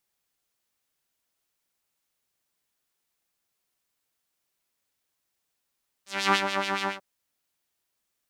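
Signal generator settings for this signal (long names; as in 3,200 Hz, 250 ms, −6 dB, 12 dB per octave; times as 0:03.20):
subtractive patch with filter wobble G3, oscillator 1 saw, interval +7 semitones, sub −22 dB, filter bandpass, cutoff 1,100 Hz, Q 1.4, filter envelope 2 octaves, attack 291 ms, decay 0.06 s, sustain −8 dB, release 0.13 s, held 0.81 s, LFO 7.1 Hz, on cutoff 0.9 octaves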